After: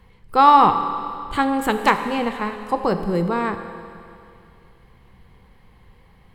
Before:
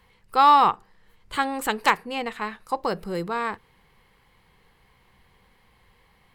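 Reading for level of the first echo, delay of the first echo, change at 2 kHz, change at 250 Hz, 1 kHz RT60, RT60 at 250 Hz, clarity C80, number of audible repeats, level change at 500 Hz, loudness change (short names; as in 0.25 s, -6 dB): none, none, +2.0 dB, +9.5 dB, 2.5 s, 2.5 s, 10.0 dB, none, +6.5 dB, +4.0 dB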